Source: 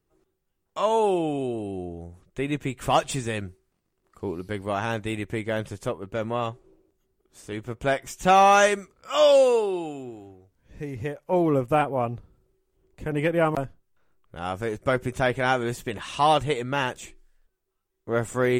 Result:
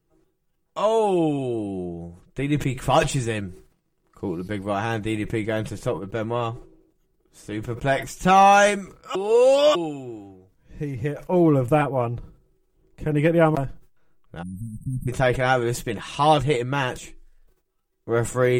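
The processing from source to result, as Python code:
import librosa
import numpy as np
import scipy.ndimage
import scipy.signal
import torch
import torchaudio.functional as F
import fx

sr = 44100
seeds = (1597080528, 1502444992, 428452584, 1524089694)

y = fx.brickwall_bandstop(x, sr, low_hz=270.0, high_hz=8000.0, at=(14.41, 15.07), fade=0.02)
y = fx.edit(y, sr, fx.reverse_span(start_s=9.15, length_s=0.6), tone=tone)
y = fx.low_shelf(y, sr, hz=380.0, db=4.5)
y = y + 0.46 * np.pad(y, (int(6.2 * sr / 1000.0), 0))[:len(y)]
y = fx.sustainer(y, sr, db_per_s=120.0)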